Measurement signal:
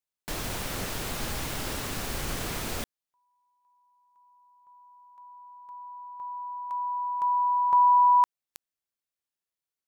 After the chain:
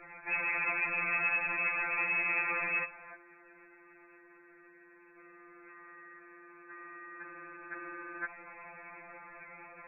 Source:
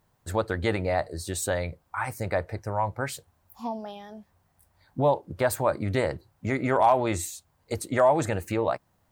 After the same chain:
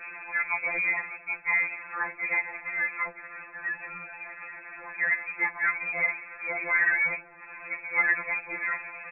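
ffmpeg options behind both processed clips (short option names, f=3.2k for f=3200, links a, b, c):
-af "aeval=exprs='val(0)+0.5*0.0335*sgn(val(0))':c=same,lowshelf=f=110:g=-5,aresample=8000,acrusher=bits=3:mode=log:mix=0:aa=0.000001,aresample=44100,lowpass=f=2.2k:t=q:w=0.5098,lowpass=f=2.2k:t=q:w=0.6013,lowpass=f=2.2k:t=q:w=0.9,lowpass=f=2.2k:t=q:w=2.563,afreqshift=-2600,afftfilt=real='re*2.83*eq(mod(b,8),0)':imag='im*2.83*eq(mod(b,8),0)':win_size=2048:overlap=0.75"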